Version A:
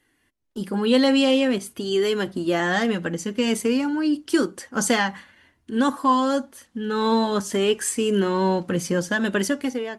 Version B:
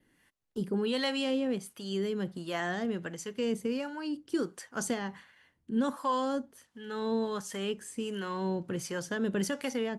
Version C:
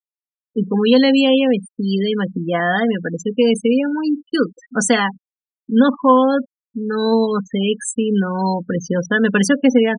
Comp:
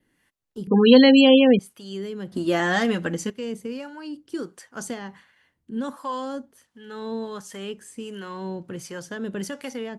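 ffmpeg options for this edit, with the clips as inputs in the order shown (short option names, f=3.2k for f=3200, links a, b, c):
-filter_complex "[1:a]asplit=3[a][b][c];[a]atrim=end=0.672[d];[2:a]atrim=start=0.668:end=1.592[e];[b]atrim=start=1.588:end=2.322[f];[0:a]atrim=start=2.318:end=3.302[g];[c]atrim=start=3.298[h];[d][e]acrossfade=d=0.004:c1=hsin:c2=hsin[i];[i][f]acrossfade=d=0.004:c1=hsin:c2=hsin[j];[j][g]acrossfade=d=0.004:c1=hsin:c2=hsin[k];[k][h]acrossfade=d=0.004:c1=hsin:c2=hsin"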